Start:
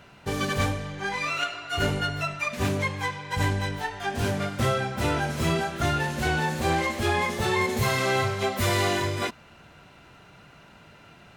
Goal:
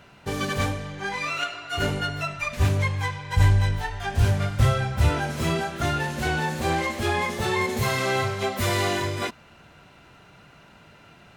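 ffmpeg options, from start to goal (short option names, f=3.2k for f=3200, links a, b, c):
-filter_complex "[0:a]asplit=3[a][b][c];[a]afade=t=out:st=2.36:d=0.02[d];[b]asubboost=boost=10:cutoff=83,afade=t=in:st=2.36:d=0.02,afade=t=out:st=5.09:d=0.02[e];[c]afade=t=in:st=5.09:d=0.02[f];[d][e][f]amix=inputs=3:normalize=0"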